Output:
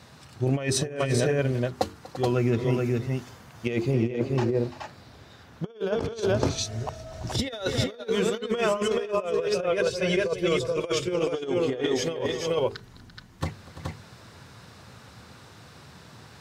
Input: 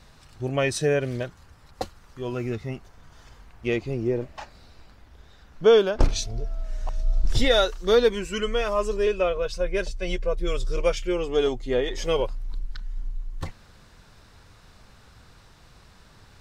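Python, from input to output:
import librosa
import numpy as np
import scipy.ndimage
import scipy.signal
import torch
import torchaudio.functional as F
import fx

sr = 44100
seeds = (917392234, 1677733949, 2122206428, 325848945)

y = scipy.signal.sosfilt(scipy.signal.butter(4, 94.0, 'highpass', fs=sr, output='sos'), x)
y = fx.low_shelf(y, sr, hz=440.0, db=4.5)
y = fx.hum_notches(y, sr, base_hz=50, count=9)
y = fx.echo_multitap(y, sr, ms=(241, 340, 425, 433), db=(-19.5, -14.5, -4.5, -18.0))
y = fx.over_compress(y, sr, threshold_db=-25.0, ratio=-0.5)
y = fx.high_shelf(y, sr, hz=8100.0, db=7.5, at=(2.7, 3.94))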